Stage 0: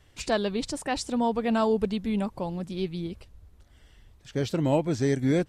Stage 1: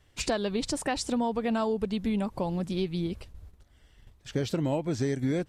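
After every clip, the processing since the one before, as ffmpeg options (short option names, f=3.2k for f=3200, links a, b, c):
-af "agate=range=-8dB:threshold=-51dB:ratio=16:detection=peak,acompressor=threshold=-29dB:ratio=6,volume=4dB"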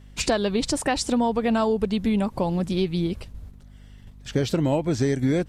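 -af "aeval=exprs='val(0)+0.00282*(sin(2*PI*50*n/s)+sin(2*PI*2*50*n/s)/2+sin(2*PI*3*50*n/s)/3+sin(2*PI*4*50*n/s)/4+sin(2*PI*5*50*n/s)/5)':c=same,volume=6dB"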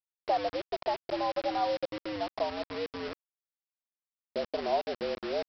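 -af "afreqshift=95,bandpass=f=690:t=q:w=3.1:csg=0,aresample=11025,acrusher=bits=5:mix=0:aa=0.000001,aresample=44100,volume=-2dB"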